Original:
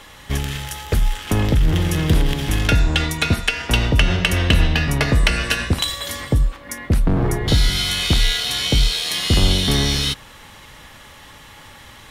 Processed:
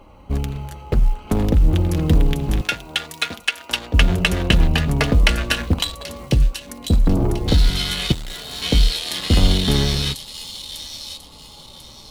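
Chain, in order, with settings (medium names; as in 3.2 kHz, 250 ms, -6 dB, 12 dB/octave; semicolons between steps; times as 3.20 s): local Wiener filter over 25 samples; 2.61–3.94 s: high-pass 1.3 kHz 6 dB/octave; 8.12–8.62 s: valve stage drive 30 dB, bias 0.7; flange 0.55 Hz, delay 3.2 ms, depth 2.4 ms, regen -50%; companded quantiser 8-bit; on a send: feedback echo behind a high-pass 1043 ms, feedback 33%, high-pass 4.2 kHz, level -4.5 dB; on the sum: trim +5 dB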